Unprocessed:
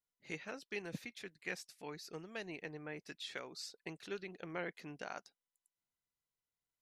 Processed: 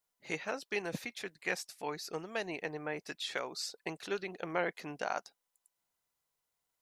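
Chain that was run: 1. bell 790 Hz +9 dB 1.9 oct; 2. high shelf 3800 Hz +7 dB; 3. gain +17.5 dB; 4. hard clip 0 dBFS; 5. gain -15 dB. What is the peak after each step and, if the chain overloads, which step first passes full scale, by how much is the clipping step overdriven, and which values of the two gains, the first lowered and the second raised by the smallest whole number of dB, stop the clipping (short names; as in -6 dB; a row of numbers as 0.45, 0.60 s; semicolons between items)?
-22.0, -20.5, -3.0, -3.0, -18.0 dBFS; no overload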